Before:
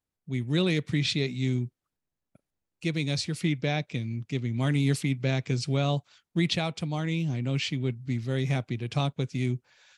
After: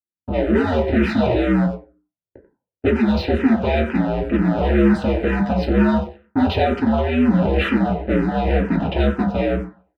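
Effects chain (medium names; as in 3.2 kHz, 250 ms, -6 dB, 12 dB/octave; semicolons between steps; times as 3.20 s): cycle switcher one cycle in 2, inverted; level-controlled noise filter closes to 450 Hz, open at -24.5 dBFS; gate -59 dBFS, range -18 dB; bass shelf 90 Hz -7.5 dB; in parallel at +2 dB: compression, threshold -36 dBFS, peak gain reduction 13.5 dB; on the sum: waveshaping leveller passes 3; saturation -17 dBFS, distortion -17 dB; distance through air 490 m; comb of notches 1.1 kHz; speakerphone echo 90 ms, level -10 dB; reverberation RT60 0.40 s, pre-delay 3 ms, DRR 1.5 dB; barber-pole phaser -2.1 Hz; trim +7.5 dB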